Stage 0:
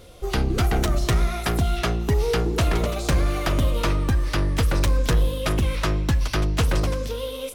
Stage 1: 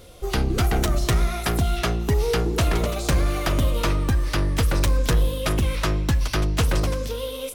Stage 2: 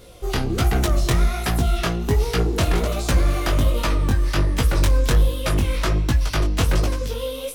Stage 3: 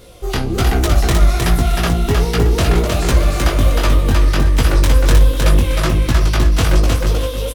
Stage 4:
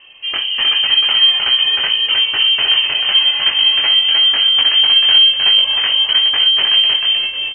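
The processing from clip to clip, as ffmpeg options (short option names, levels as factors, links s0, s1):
-af "highshelf=f=7000:g=4"
-af "flanger=delay=16:depth=7.3:speed=1.3,volume=1.58"
-af "aecho=1:1:311|622|933|1244:0.708|0.184|0.0479|0.0124,volume=1.5"
-af "lowpass=f=2700:t=q:w=0.5098,lowpass=f=2700:t=q:w=0.6013,lowpass=f=2700:t=q:w=0.9,lowpass=f=2700:t=q:w=2.563,afreqshift=-3200,volume=0.891"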